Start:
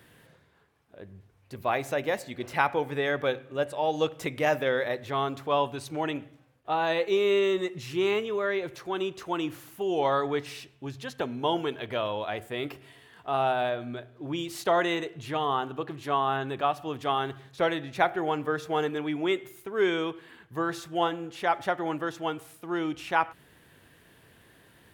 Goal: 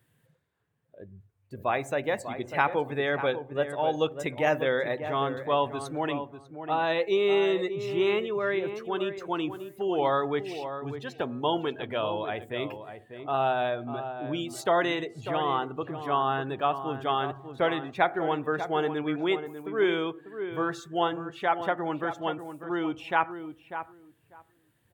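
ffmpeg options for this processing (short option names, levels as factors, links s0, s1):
-filter_complex "[0:a]afftdn=nr=16:nf=-44,aexciter=amount=2.4:drive=2:freq=7100,asplit=2[s0][s1];[s1]adelay=595,lowpass=f=1500:p=1,volume=0.355,asplit=2[s2][s3];[s3]adelay=595,lowpass=f=1500:p=1,volume=0.17,asplit=2[s4][s5];[s5]adelay=595,lowpass=f=1500:p=1,volume=0.17[s6];[s2][s4][s6]amix=inputs=3:normalize=0[s7];[s0][s7]amix=inputs=2:normalize=0"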